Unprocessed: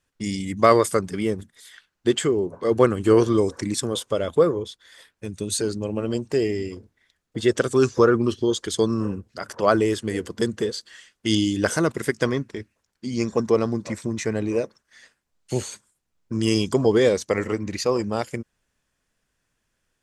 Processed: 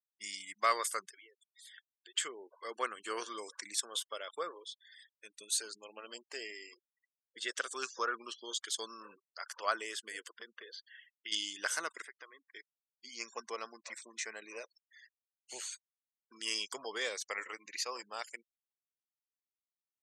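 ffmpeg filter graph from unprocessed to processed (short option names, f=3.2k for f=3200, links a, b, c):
-filter_complex "[0:a]asettb=1/sr,asplit=3[a][b][c];[a]atrim=end=1.094[d];[b]atrim=start=1.09:end=2.15,asetpts=PTS-STARTPTS,afade=t=in:d=0.004:c=qsin,afade=t=out:st=1.056:d=0.004:c=qsin,acompressor=threshold=-36dB:ratio=4:attack=3.2:release=140:knee=1:detection=peak,bandreject=f=2k:w=24[e];[c]atrim=start=2.146[f];[d][e]acrossfade=d=0.004:c1=hsin:c2=qsin[g];[g][f]acrossfade=d=0.004:c1=qsin:c2=hsin,asettb=1/sr,asplit=3[h][i][j];[h]atrim=end=10.304[k];[i]atrim=start=10.3:end=11.32,asetpts=PTS-STARTPTS,afade=t=in:d=0.004:c=qsin,afade=t=out:st=1.016:d=0.004:c=qsin,highpass=200,lowpass=3k,acompressor=threshold=-27dB:ratio=2.5:attack=3.2:release=140:knee=1:detection=peak[l];[j]atrim=start=11.316[m];[k][l]acrossfade=d=0.004:c1=hsin:c2=qsin[n];[n][m]acrossfade=d=0.004:c1=qsin:c2=hsin,asettb=1/sr,asplit=3[o][p][q];[o]atrim=end=12.024[r];[p]atrim=start=12.02:end=12.55,asetpts=PTS-STARTPTS,afade=t=in:d=0.004:c=qsin,afade=t=out:st=0.526:d=0.004:c=qsin,aemphasis=mode=reproduction:type=75fm,acompressor=threshold=-37dB:ratio=2.5:attack=3.2:release=140:knee=1:detection=peak[s];[q]atrim=start=12.546[t];[r][s]acrossfade=d=0.004:c1=hsin:c2=qsin[u];[u][t]acrossfade=d=0.004:c1=qsin:c2=hsin,highpass=1.3k,afftfilt=real='re*gte(hypot(re,im),0.00501)':imag='im*gte(hypot(re,im),0.00501)':win_size=1024:overlap=0.75,volume=-6.5dB"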